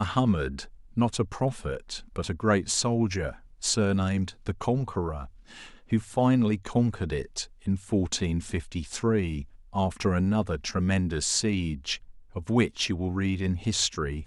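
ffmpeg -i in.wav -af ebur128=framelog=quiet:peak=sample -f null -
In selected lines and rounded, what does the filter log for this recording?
Integrated loudness:
  I:         -27.8 LUFS
  Threshold: -38.0 LUFS
Loudness range:
  LRA:         1.7 LU
  Threshold: -48.0 LUFS
  LRA low:   -29.2 LUFS
  LRA high:  -27.4 LUFS
Sample peak:
  Peak:      -10.1 dBFS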